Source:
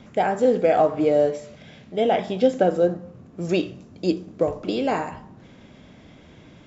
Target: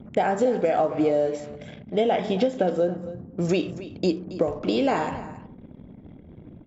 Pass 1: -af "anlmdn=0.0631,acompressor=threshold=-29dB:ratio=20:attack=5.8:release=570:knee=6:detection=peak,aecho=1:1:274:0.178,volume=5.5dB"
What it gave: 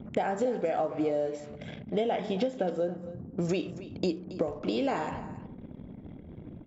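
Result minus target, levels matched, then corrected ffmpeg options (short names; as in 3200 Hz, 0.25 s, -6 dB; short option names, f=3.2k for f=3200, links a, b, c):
compressor: peak gain reduction +7 dB
-af "anlmdn=0.0631,acompressor=threshold=-21.5dB:ratio=20:attack=5.8:release=570:knee=6:detection=peak,aecho=1:1:274:0.178,volume=5.5dB"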